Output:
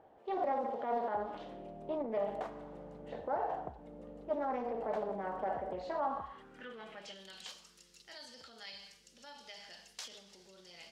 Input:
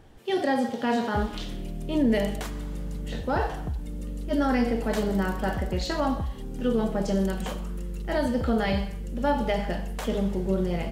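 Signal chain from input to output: peak limiter -23 dBFS, peak gain reduction 9.5 dB; band-pass sweep 690 Hz -> 5.1 kHz, 5.87–7.57 s; loudspeaker Doppler distortion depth 0.21 ms; trim +2.5 dB

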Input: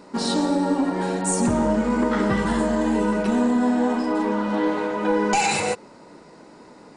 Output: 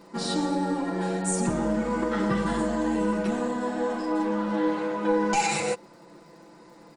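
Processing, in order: crackle 85 per s -46 dBFS; comb 5.9 ms, depth 73%; trim -6 dB

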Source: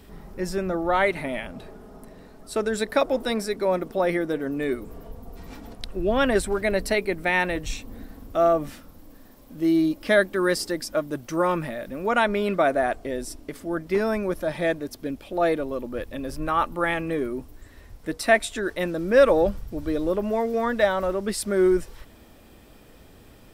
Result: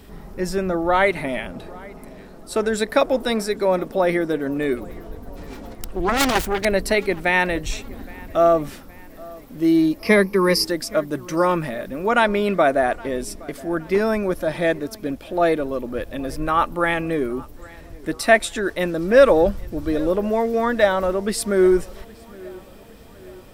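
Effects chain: 4.77–6.65 s: self-modulated delay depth 0.99 ms; 9.99–10.65 s: rippled EQ curve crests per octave 0.85, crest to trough 15 dB; on a send: filtered feedback delay 818 ms, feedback 54%, low-pass 3.6 kHz, level -22.5 dB; on the sum: trim +4 dB

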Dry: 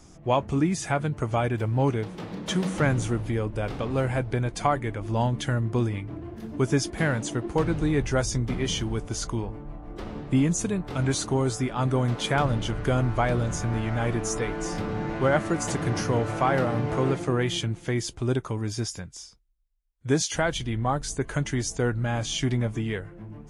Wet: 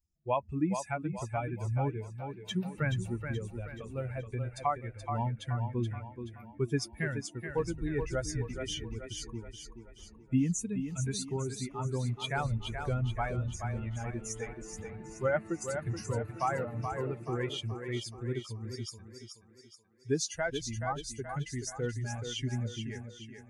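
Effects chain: expander on every frequency bin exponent 2; thinning echo 427 ms, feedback 47%, high-pass 190 Hz, level -6.5 dB; trim -3.5 dB

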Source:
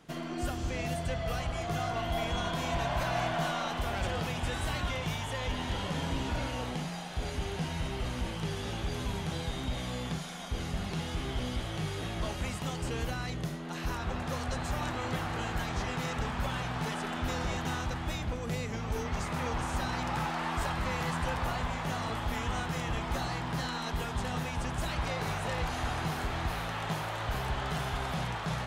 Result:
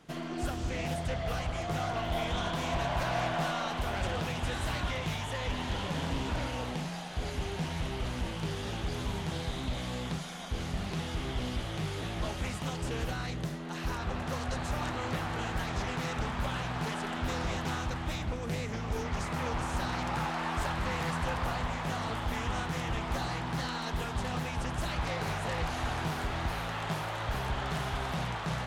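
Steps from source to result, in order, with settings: loudspeaker Doppler distortion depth 0.34 ms

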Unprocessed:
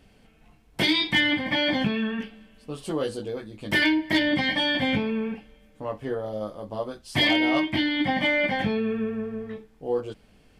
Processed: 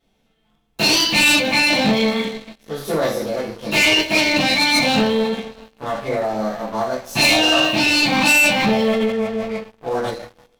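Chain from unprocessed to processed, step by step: two-slope reverb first 0.42 s, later 1.7 s, DRR -9.5 dB; waveshaping leveller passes 3; formant shift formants +4 st; trim -10.5 dB

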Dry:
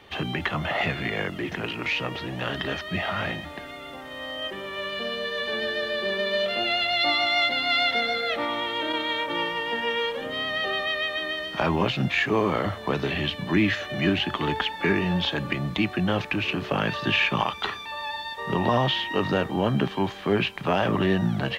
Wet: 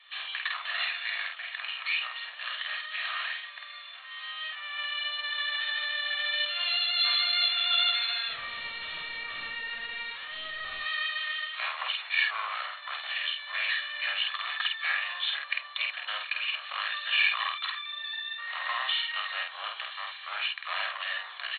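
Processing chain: comb filter that takes the minimum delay 1.7 ms; Bessel high-pass 1.6 kHz, order 6; 8.28–10.81 s: hard clipper -36.5 dBFS, distortion -14 dB; brick-wall FIR low-pass 4.4 kHz; doubling 49 ms -3 dB

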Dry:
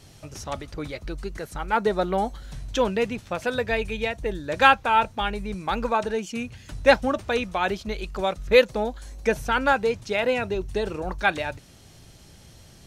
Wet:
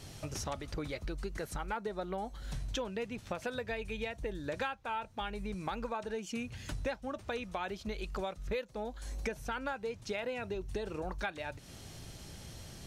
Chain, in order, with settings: compression 8:1, threshold -36 dBFS, peak gain reduction 24.5 dB; trim +1 dB

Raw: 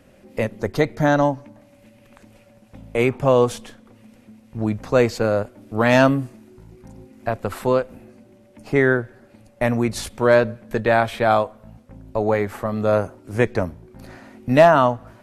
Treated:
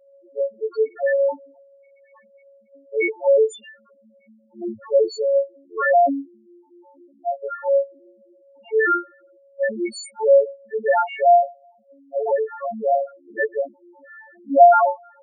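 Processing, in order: partials quantised in pitch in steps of 4 st; three-band isolator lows -19 dB, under 290 Hz, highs -14 dB, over 2.6 kHz; loudest bins only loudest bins 2; trim +4 dB

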